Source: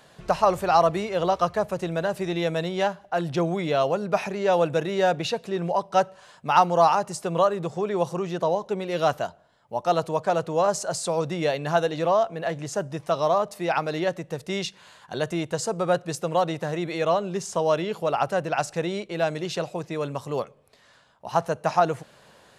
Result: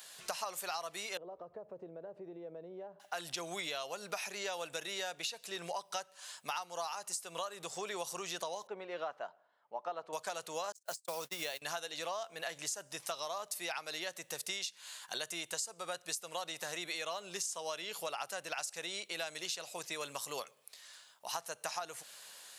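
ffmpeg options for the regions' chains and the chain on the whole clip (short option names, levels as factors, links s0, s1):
-filter_complex "[0:a]asettb=1/sr,asplit=3[s0][s1][s2];[s0]atrim=end=1.174[s3];[s1]atrim=start=1.17:end=3,asetpts=PTS-STARTPTS,afade=t=in:d=0.004:c=qsin,afade=t=out:st=1.826:d=0.004:c=qsin,acompressor=threshold=0.0251:ratio=4:attack=3.2:release=140:knee=1:detection=peak,lowpass=f=460:t=q:w=1.6[s4];[s2]atrim=start=2.996[s5];[s3][s4]acrossfade=d=0.004:c1=hsin:c2=qsin[s6];[s6][s5]acrossfade=d=0.004:c1=qsin:c2=hsin,asettb=1/sr,asplit=3[s7][s8][s9];[s7]atrim=end=8.674[s10];[s8]atrim=start=8.67:end=10.13,asetpts=PTS-STARTPTS,afade=t=in:d=0.004:c=qsin,afade=t=out:st=1.456:d=0.004:c=qsin,lowpass=1200,equalizer=f=96:w=0.92:g=-13[s11];[s9]atrim=start=10.126[s12];[s10][s11]acrossfade=d=0.004:c1=hsin:c2=qsin[s13];[s13][s12]acrossfade=d=0.004:c1=qsin:c2=hsin,asettb=1/sr,asplit=3[s14][s15][s16];[s14]atrim=end=10.724[s17];[s15]atrim=start=10.72:end=11.62,asetpts=PTS-STARTPTS,afade=t=in:d=0.004:c=qsin,afade=t=out:st=0.896:d=0.004:c=qsin,highshelf=f=2100:g=-3,aeval=exprs='val(0)*gte(abs(val(0)),0.00891)':c=same,agate=range=0.00141:threshold=0.0316:ratio=16:release=100:detection=peak[s18];[s16]atrim=start=11.616[s19];[s17][s18]acrossfade=d=0.004:c1=hsin:c2=qsin[s20];[s20][s19]acrossfade=d=0.004:c1=qsin:c2=hsin,aderivative,acompressor=threshold=0.00501:ratio=16,volume=3.35"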